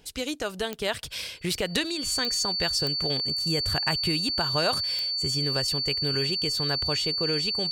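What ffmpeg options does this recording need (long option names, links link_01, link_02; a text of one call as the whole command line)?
ffmpeg -i in.wav -af "adeclick=threshold=4,bandreject=frequency=4500:width=30" out.wav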